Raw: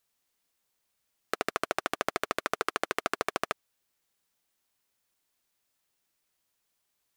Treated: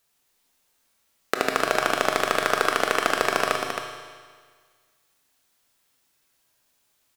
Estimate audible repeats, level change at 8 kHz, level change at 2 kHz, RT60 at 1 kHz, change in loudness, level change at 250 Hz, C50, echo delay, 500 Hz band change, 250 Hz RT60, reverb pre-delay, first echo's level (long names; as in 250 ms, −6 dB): 1, +9.5 dB, +10.0 dB, 1.7 s, +9.5 dB, +8.5 dB, 1.0 dB, 268 ms, +10.0 dB, 1.7 s, 19 ms, −6.0 dB